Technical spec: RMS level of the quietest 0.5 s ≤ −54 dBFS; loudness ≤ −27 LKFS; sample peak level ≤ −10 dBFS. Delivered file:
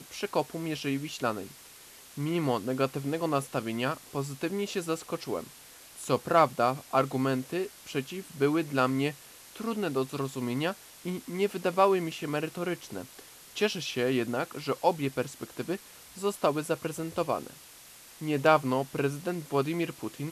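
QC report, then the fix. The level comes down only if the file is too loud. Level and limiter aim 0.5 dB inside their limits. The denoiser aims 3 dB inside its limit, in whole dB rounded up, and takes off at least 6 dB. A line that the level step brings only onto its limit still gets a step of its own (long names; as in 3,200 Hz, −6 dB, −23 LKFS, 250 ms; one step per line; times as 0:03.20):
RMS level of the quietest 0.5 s −51 dBFS: out of spec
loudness −30.5 LKFS: in spec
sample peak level −9.0 dBFS: out of spec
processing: broadband denoise 6 dB, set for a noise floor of −51 dBFS
brickwall limiter −10.5 dBFS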